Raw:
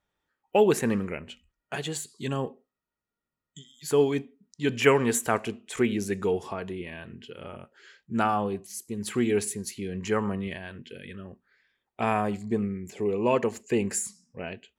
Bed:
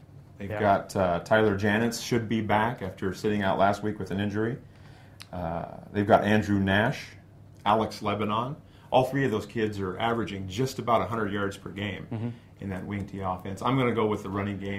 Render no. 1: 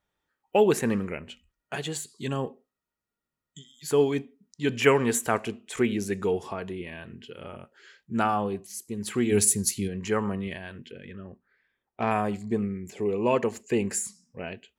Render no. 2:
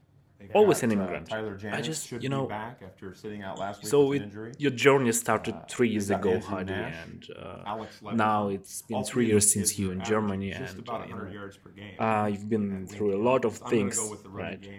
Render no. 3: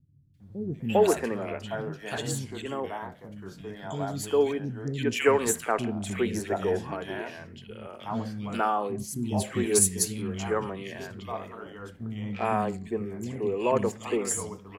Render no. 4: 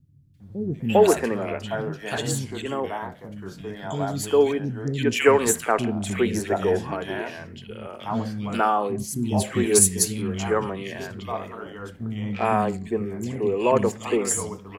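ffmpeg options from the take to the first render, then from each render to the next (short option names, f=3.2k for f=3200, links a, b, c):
-filter_complex "[0:a]asplit=3[a][b][c];[a]afade=t=out:st=9.31:d=0.02[d];[b]bass=f=250:g=9,treble=f=4k:g=12,afade=t=in:st=9.31:d=0.02,afade=t=out:st=9.87:d=0.02[e];[c]afade=t=in:st=9.87:d=0.02[f];[d][e][f]amix=inputs=3:normalize=0,asettb=1/sr,asplit=3[g][h][i];[g]atrim=end=10.914[j];[h]atrim=start=10.91:end=12.11,asetpts=PTS-STARTPTS,afade=t=in:d=0.004:c=qsin,afade=t=out:st=1.196:d=0.004:c=qsin,adynamicsmooth=sensitivity=1:basefreq=2.9k[k];[i]atrim=start=12.106[l];[j][k]acrossfade=d=0.004:c1=hsin:c2=qsin[m];[m][l]acrossfade=d=0.004:c1=qsin:c2=hsin"
-filter_complex "[1:a]volume=-11.5dB[a];[0:a][a]amix=inputs=2:normalize=0"
-filter_complex "[0:a]acrossover=split=250|2100[a][b][c];[c]adelay=340[d];[b]adelay=400[e];[a][e][d]amix=inputs=3:normalize=0"
-af "volume=5dB"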